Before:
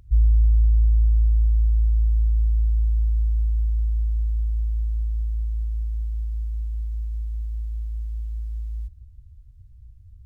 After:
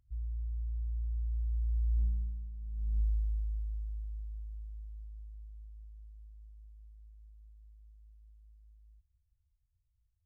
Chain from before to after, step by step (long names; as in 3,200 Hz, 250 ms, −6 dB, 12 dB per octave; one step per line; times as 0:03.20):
source passing by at 0:02.55, 12 m/s, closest 2.9 metres
compressor whose output falls as the input rises −26 dBFS, ratio −0.5
level −4 dB